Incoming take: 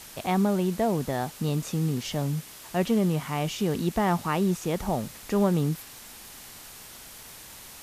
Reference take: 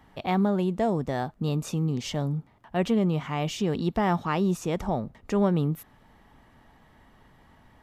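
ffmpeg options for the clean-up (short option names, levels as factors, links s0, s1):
-af "afwtdn=0.0063"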